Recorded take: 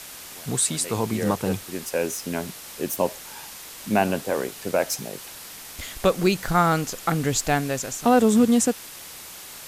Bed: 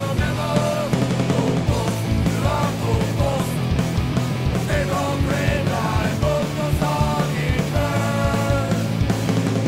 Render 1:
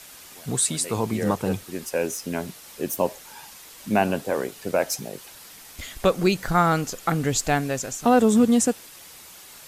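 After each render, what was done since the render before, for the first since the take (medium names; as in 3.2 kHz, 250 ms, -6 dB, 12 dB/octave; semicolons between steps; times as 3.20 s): noise reduction 6 dB, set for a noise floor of -41 dBFS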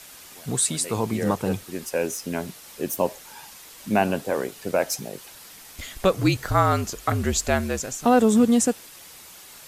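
6.13–7.80 s: frequency shift -56 Hz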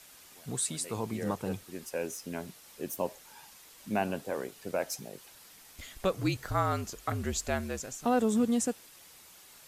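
trim -9.5 dB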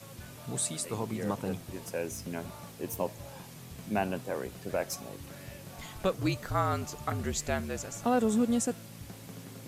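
add bed -26.5 dB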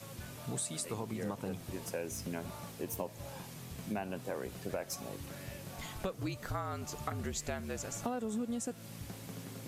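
compression 6:1, threshold -34 dBFS, peak gain reduction 12 dB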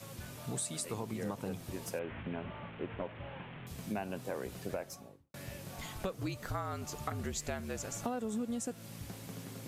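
1.99–3.67 s: one-bit delta coder 16 kbps, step -43 dBFS; 4.66–5.34 s: studio fade out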